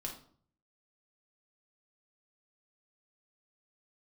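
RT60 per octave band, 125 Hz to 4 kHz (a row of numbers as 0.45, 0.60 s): 0.85, 0.60, 0.55, 0.50, 0.40, 0.40 s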